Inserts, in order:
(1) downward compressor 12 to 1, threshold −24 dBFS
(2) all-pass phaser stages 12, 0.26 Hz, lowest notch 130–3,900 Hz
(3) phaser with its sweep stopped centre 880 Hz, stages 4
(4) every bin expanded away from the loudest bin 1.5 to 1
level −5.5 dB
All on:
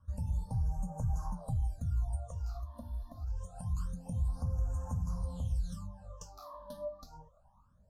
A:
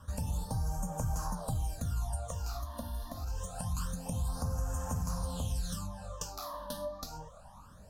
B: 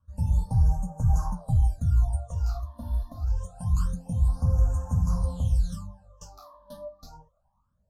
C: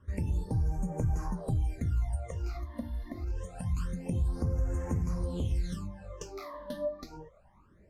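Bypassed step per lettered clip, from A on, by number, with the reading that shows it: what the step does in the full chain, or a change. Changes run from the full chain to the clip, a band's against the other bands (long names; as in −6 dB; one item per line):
4, 4 kHz band +10.0 dB
1, average gain reduction 7.5 dB
3, 250 Hz band +5.0 dB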